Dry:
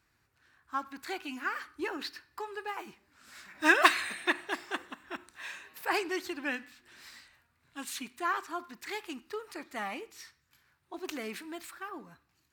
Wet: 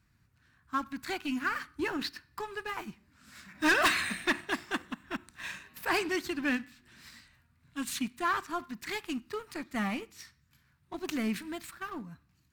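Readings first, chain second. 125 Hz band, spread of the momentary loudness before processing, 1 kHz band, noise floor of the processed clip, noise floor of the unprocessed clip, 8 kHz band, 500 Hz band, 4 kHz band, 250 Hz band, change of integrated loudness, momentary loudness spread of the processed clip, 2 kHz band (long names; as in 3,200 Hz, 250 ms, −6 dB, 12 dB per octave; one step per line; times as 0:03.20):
can't be measured, 19 LU, −1.0 dB, −70 dBFS, −74 dBFS, +2.0 dB, +0.5 dB, +1.5 dB, +5.5 dB, +0.5 dB, 17 LU, −0.5 dB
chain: leveller curve on the samples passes 1
low shelf with overshoot 280 Hz +10 dB, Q 1.5
soft clipping −20 dBFS, distortion −10 dB
notch filter 820 Hz, Q 16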